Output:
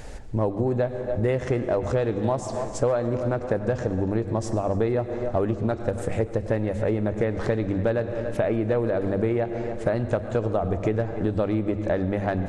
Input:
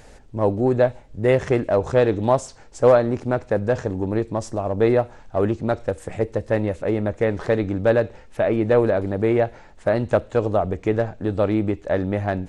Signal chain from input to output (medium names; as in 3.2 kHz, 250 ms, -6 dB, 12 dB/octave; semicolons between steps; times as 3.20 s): bass shelf 190 Hz +6 dB; hum notches 50/100/150/200/250 Hz; filtered feedback delay 288 ms, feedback 51%, low-pass 4.9 kHz, level -18 dB; on a send at -13.5 dB: reverberation RT60 1.3 s, pre-delay 88 ms; on the sum: compression 6:1, threshold -25 dBFS, peak gain reduction 14.5 dB; trim +4 dB